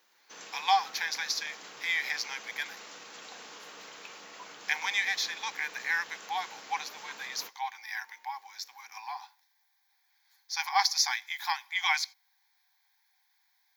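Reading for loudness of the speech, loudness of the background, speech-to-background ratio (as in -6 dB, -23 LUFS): -31.5 LUFS, -46.0 LUFS, 14.5 dB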